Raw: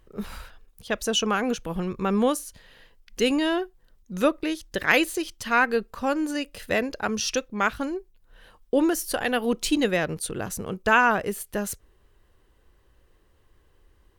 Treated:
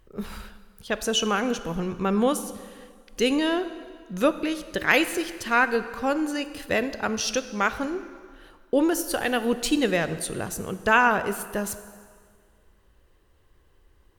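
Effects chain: plate-style reverb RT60 1.9 s, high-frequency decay 0.85×, DRR 11.5 dB

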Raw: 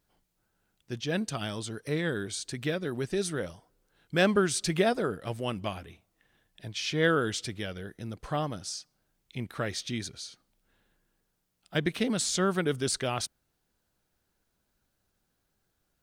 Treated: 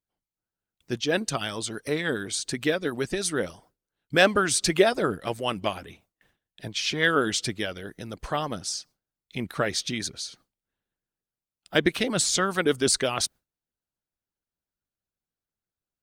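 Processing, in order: harmonic-percussive split harmonic -11 dB; gate with hold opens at -56 dBFS; gain +8 dB

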